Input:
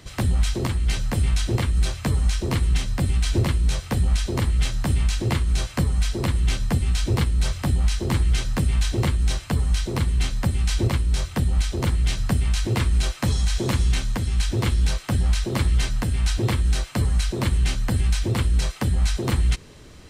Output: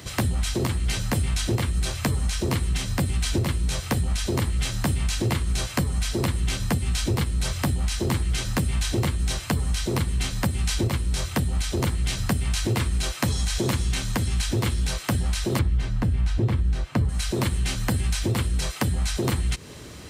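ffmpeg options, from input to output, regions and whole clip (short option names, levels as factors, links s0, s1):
-filter_complex "[0:a]asettb=1/sr,asplit=3[s0][s1][s2];[s0]atrim=end=15.594[s3];[s1]atrim=start=15.59:end=17.09,asetpts=PTS-STARTPTS,afade=t=in:d=0.004:c=qsin,afade=t=out:st=1.496:d=0.004:c=qsin,lowpass=f=1900:p=1,lowshelf=f=230:g=8[s4];[s2]atrim=start=17.086[s5];[s3][s4]acrossfade=d=0.004:c1=hsin:c2=qsin[s6];[s6][s5]acrossfade=d=0.004:c1=qsin:c2=hsin,highpass=65,highshelf=f=9900:g=7.5,acompressor=threshold=0.0447:ratio=4,volume=1.88"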